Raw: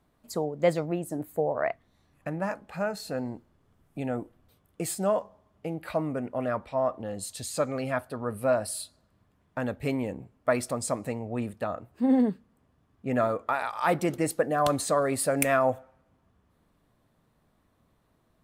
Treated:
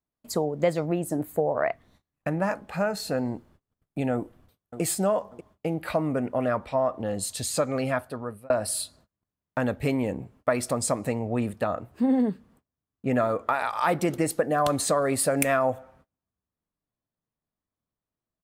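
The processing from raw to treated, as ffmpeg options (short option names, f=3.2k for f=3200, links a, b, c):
-filter_complex "[0:a]asplit=2[a][b];[b]afade=t=in:st=4.13:d=0.01,afade=t=out:st=4.81:d=0.01,aecho=0:1:590|1180|1770:0.211349|0.0634047|0.0190214[c];[a][c]amix=inputs=2:normalize=0,asplit=2[d][e];[d]atrim=end=8.5,asetpts=PTS-STARTPTS,afade=t=out:st=7.57:d=0.93:c=qsin[f];[e]atrim=start=8.5,asetpts=PTS-STARTPTS,afade=t=in:d=0.004:c=hsin[g];[f][g]concat=n=2:v=0:a=1,agate=range=-29dB:threshold=-60dB:ratio=16:detection=peak,acompressor=threshold=-28dB:ratio=2.5,volume=6dB"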